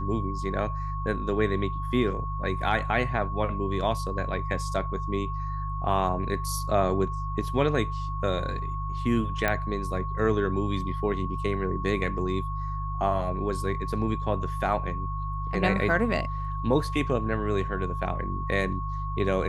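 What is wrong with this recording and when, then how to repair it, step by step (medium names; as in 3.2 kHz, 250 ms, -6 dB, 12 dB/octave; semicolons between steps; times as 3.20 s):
hum 50 Hz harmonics 3 -32 dBFS
whine 1.1 kHz -34 dBFS
9.48 s: pop -11 dBFS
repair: de-click; band-stop 1.1 kHz, Q 30; de-hum 50 Hz, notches 3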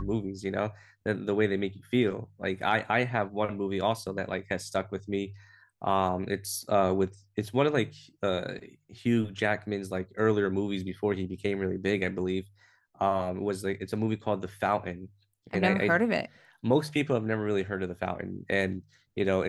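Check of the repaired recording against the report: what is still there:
nothing left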